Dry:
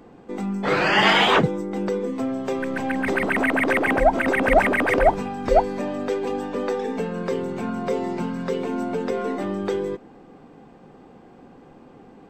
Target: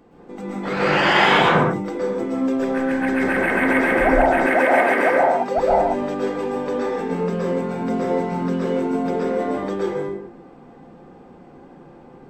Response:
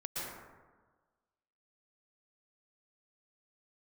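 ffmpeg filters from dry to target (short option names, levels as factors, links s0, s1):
-filter_complex "[0:a]asettb=1/sr,asplit=3[s0][s1][s2];[s0]atrim=end=4.254[s3];[s1]atrim=start=4.25:end=5.58,asetpts=PTS-STARTPTS,afade=t=in:d=0.004:c=qsin,afade=t=out:st=1.326:d=0.004:c=qsin,highpass=270[s4];[s2]atrim=start=5.576[s5];[s3][s4]acrossfade=d=0.004:c1=hsin:c2=qsin[s6];[s6][s5]acrossfade=d=0.004:c1=qsin:c2=hsin[s7];[1:a]atrim=start_sample=2205,afade=t=out:st=0.4:d=0.01,atrim=end_sample=18081[s8];[s7][s8]afir=irnorm=-1:irlink=0"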